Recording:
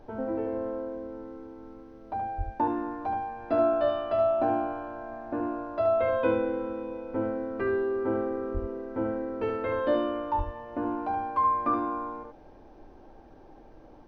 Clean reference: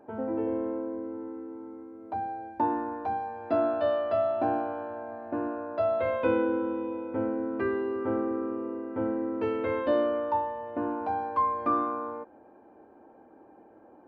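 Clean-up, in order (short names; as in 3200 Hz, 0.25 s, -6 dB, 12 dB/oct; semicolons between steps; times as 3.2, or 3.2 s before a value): 2.37–2.49 HPF 140 Hz 24 dB/oct; 8.53–8.65 HPF 140 Hz 24 dB/oct; 10.37–10.49 HPF 140 Hz 24 dB/oct; noise print and reduce 6 dB; inverse comb 74 ms -6.5 dB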